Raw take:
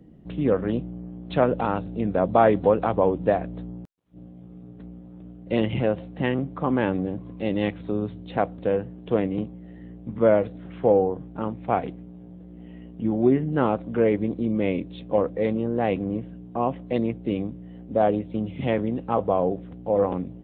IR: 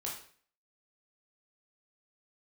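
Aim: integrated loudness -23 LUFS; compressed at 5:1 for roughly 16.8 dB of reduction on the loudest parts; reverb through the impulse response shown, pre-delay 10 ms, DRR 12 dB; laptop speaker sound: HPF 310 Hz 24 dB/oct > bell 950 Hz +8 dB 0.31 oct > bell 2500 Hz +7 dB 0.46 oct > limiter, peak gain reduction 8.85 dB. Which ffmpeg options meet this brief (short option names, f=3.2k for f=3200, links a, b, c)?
-filter_complex "[0:a]acompressor=threshold=-33dB:ratio=5,asplit=2[a][b];[1:a]atrim=start_sample=2205,adelay=10[c];[b][c]afir=irnorm=-1:irlink=0,volume=-13dB[d];[a][d]amix=inputs=2:normalize=0,highpass=f=310:w=0.5412,highpass=f=310:w=1.3066,equalizer=f=950:t=o:w=0.31:g=8,equalizer=f=2.5k:t=o:w=0.46:g=7,volume=18.5dB,alimiter=limit=-10dB:level=0:latency=1"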